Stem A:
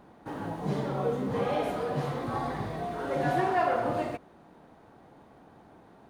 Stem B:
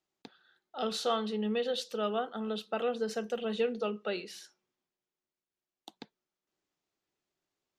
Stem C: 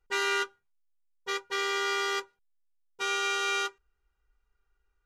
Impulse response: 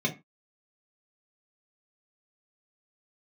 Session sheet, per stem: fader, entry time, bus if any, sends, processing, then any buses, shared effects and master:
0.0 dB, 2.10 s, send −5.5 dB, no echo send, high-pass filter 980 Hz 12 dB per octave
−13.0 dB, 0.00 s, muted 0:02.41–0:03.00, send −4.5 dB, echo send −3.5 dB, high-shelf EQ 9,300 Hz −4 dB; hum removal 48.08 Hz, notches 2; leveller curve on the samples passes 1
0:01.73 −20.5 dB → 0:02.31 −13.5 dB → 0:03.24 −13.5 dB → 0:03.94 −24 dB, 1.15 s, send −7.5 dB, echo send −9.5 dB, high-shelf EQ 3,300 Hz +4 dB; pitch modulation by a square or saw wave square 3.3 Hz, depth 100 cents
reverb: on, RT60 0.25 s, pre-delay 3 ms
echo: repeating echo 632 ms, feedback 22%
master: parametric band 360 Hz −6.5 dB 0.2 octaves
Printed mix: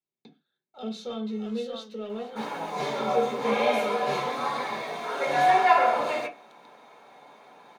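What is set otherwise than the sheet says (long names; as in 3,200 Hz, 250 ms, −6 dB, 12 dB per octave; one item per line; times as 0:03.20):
stem A 0.0 dB → +9.0 dB
stem C −20.5 dB → −31.5 dB
master: missing parametric band 360 Hz −6.5 dB 0.2 octaves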